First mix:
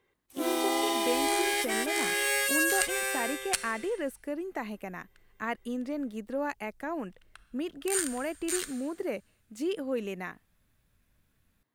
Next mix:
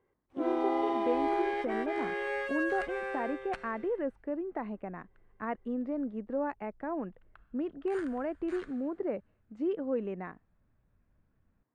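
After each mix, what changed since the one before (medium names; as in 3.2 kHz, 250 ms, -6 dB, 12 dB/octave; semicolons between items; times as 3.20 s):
master: add low-pass 1.2 kHz 12 dB/octave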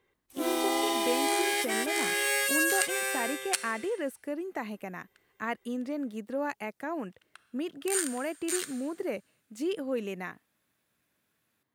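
second sound: add high-pass 320 Hz 12 dB/octave; master: remove low-pass 1.2 kHz 12 dB/octave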